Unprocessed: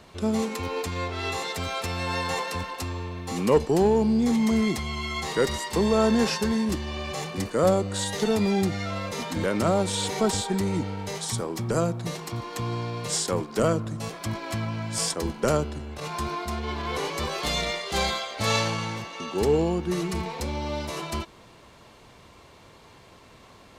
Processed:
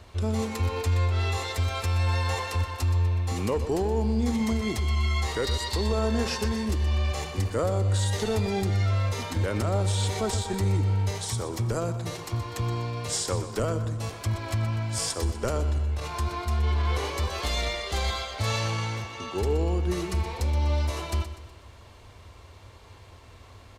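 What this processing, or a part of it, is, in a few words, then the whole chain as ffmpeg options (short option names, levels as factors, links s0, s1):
car stereo with a boomy subwoofer: -filter_complex "[0:a]asettb=1/sr,asplit=3[s0][s1][s2];[s0]atrim=end=5.434[s3];[s1]atrim=start=5.43:end=5.86,asetpts=PTS-STARTPTS,afade=t=in:d=0.004:c=qsin,afade=t=out:st=0.426:d=0.004:c=qsin,equalizer=f=4200:t=o:w=0.43:g=11.5[s4];[s2]atrim=start=5.856[s5];[s3][s4]acrossfade=d=0.004:c1=hsin:c2=qsin[s6];[s6][s5]acrossfade=d=0.004:c1=qsin:c2=hsin,lowshelf=f=120:t=q:w=3:g=7.5,alimiter=limit=0.15:level=0:latency=1:release=119,aecho=1:1:123|246|369|492|615:0.251|0.113|0.0509|0.0229|0.0103,volume=0.841"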